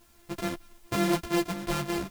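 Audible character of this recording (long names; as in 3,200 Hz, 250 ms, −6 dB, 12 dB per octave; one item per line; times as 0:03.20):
a buzz of ramps at a fixed pitch in blocks of 128 samples
tremolo saw up 2.1 Hz, depth 30%
a quantiser's noise floor 10 bits, dither triangular
a shimmering, thickened sound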